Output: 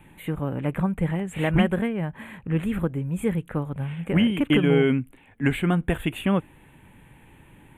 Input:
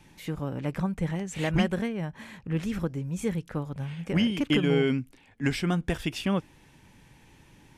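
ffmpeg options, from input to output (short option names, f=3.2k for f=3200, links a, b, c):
-af "asuperstop=centerf=5300:order=4:qfactor=0.88,volume=4.5dB"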